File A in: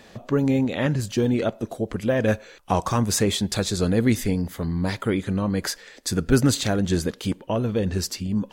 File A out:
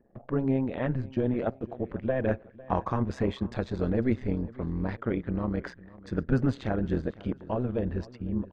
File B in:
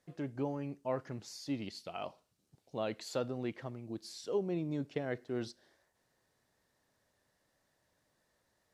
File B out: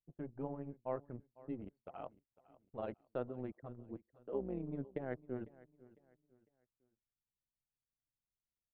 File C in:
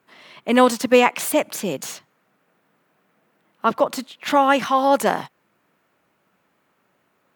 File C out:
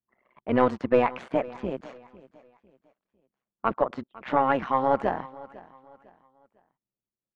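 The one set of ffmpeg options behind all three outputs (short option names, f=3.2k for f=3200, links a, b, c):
-af "lowpass=1.7k,anlmdn=0.0631,tremolo=f=130:d=0.75,aeval=exprs='0.668*(cos(1*acos(clip(val(0)/0.668,-1,1)))-cos(1*PI/2))+0.119*(cos(2*acos(clip(val(0)/0.668,-1,1)))-cos(2*PI/2))':c=same,aecho=1:1:502|1004|1506:0.1|0.034|0.0116,volume=-2.5dB"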